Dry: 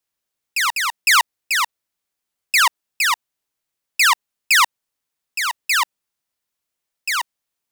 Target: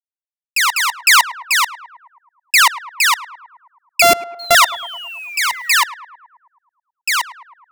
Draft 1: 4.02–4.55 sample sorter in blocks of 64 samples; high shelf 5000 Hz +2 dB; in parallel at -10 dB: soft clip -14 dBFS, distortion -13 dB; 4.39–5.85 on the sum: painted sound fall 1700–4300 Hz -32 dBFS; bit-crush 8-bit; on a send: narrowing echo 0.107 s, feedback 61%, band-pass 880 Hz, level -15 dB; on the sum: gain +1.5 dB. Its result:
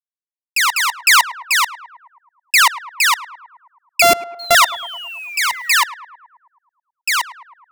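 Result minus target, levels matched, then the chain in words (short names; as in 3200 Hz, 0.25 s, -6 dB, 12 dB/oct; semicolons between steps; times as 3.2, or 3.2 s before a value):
soft clip: distortion +15 dB
4.02–4.55 sample sorter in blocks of 64 samples; high shelf 5000 Hz +2 dB; in parallel at -10 dB: soft clip -3.5 dBFS, distortion -28 dB; 4.39–5.85 on the sum: painted sound fall 1700–4300 Hz -32 dBFS; bit-crush 8-bit; on a send: narrowing echo 0.107 s, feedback 61%, band-pass 880 Hz, level -15 dB; on the sum: gain +1.5 dB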